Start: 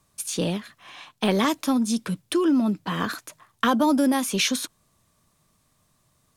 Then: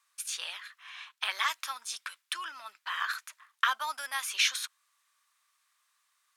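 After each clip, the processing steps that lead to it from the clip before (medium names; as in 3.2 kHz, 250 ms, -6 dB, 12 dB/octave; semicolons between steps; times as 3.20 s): high-pass 1.3 kHz 24 dB/octave; treble shelf 3.4 kHz -10 dB; trim +2.5 dB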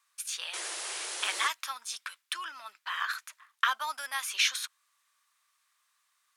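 painted sound noise, 0.53–1.48 s, 310–11000 Hz -38 dBFS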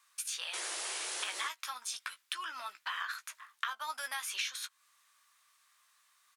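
compression 4:1, threshold -41 dBFS, peak gain reduction 16.5 dB; doubling 16 ms -8.5 dB; trim +4 dB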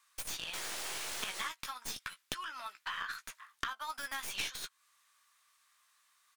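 tracing distortion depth 0.097 ms; trim -1.5 dB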